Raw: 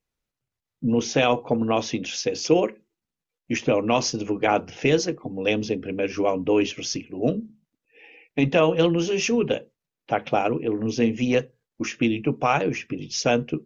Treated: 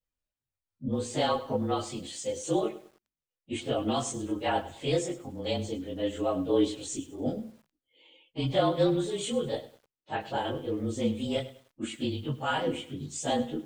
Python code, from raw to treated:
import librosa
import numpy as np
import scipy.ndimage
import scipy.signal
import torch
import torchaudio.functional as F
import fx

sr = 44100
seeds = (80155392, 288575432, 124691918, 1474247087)

y = fx.partial_stretch(x, sr, pct=109)
y = fx.chorus_voices(y, sr, voices=6, hz=0.6, base_ms=21, depth_ms=2.1, mix_pct=50)
y = fx.echo_crushed(y, sr, ms=101, feedback_pct=35, bits=8, wet_db=-15)
y = F.gain(torch.from_numpy(y), -2.0).numpy()